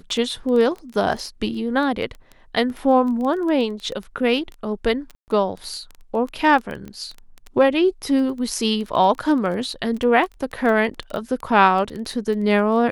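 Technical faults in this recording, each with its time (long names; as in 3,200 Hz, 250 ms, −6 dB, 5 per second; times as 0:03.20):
surface crackle 12 per second −26 dBFS
0:05.15–0:05.28: drop-out 129 ms
0:06.88: click −23 dBFS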